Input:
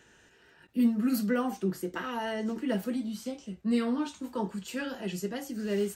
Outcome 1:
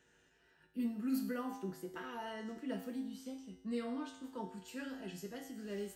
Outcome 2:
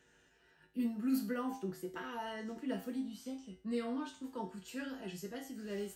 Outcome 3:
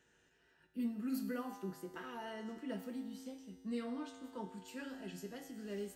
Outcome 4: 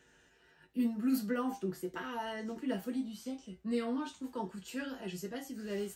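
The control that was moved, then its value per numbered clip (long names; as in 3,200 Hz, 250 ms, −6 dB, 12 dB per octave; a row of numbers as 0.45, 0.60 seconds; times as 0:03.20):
tuned comb filter, decay: 0.85, 0.4, 2, 0.16 seconds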